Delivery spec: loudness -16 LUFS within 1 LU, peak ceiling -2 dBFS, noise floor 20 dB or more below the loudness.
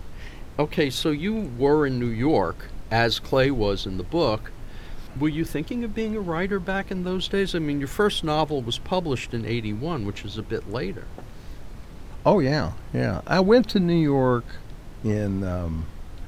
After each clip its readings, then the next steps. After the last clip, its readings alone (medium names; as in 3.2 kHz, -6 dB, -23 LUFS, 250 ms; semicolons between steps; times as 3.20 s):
noise floor -40 dBFS; noise floor target -45 dBFS; loudness -24.5 LUFS; peak level -5.0 dBFS; loudness target -16.0 LUFS
-> noise print and reduce 6 dB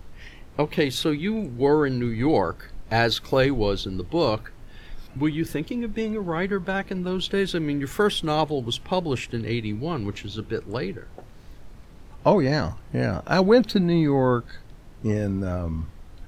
noise floor -45 dBFS; loudness -24.5 LUFS; peak level -5.5 dBFS; loudness target -16.0 LUFS
-> trim +8.5 dB; peak limiter -2 dBFS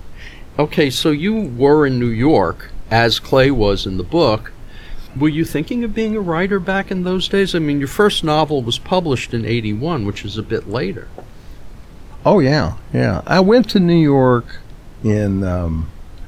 loudness -16.5 LUFS; peak level -2.0 dBFS; noise floor -37 dBFS